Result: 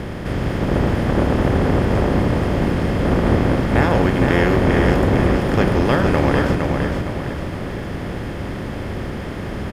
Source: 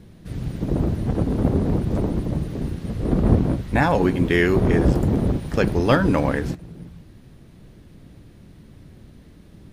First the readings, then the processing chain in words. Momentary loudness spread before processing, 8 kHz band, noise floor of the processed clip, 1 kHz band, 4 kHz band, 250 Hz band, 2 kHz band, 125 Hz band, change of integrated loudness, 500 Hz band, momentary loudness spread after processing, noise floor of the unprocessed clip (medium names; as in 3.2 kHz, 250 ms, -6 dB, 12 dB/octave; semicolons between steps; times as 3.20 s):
11 LU, no reading, -28 dBFS, +6.0 dB, +6.0 dB, +3.5 dB, +4.5 dB, +3.5 dB, +2.5 dB, +4.5 dB, 12 LU, -47 dBFS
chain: spectral levelling over time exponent 0.4; on a send: feedback delay 461 ms, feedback 41%, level -4.5 dB; on the sum: trim -4 dB